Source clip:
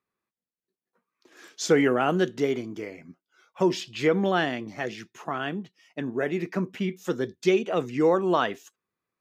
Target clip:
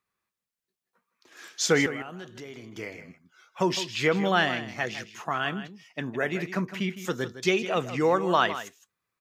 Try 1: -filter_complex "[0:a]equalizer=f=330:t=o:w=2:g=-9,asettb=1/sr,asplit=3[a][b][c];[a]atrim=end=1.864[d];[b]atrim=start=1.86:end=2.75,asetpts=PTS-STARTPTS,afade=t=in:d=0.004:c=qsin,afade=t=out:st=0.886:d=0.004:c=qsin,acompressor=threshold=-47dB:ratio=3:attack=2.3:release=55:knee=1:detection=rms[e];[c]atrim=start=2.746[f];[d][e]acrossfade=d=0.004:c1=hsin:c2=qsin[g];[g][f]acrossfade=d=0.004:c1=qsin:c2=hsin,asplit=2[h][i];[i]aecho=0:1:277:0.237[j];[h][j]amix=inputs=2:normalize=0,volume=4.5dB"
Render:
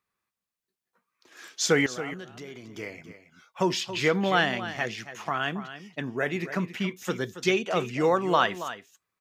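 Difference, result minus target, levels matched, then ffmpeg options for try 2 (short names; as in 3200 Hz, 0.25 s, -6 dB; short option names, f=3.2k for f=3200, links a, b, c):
echo 0.118 s late
-filter_complex "[0:a]equalizer=f=330:t=o:w=2:g=-9,asettb=1/sr,asplit=3[a][b][c];[a]atrim=end=1.864[d];[b]atrim=start=1.86:end=2.75,asetpts=PTS-STARTPTS,afade=t=in:d=0.004:c=qsin,afade=t=out:st=0.886:d=0.004:c=qsin,acompressor=threshold=-47dB:ratio=3:attack=2.3:release=55:knee=1:detection=rms[e];[c]atrim=start=2.746[f];[d][e]acrossfade=d=0.004:c1=hsin:c2=qsin[g];[g][f]acrossfade=d=0.004:c1=qsin:c2=hsin,asplit=2[h][i];[i]aecho=0:1:159:0.237[j];[h][j]amix=inputs=2:normalize=0,volume=4.5dB"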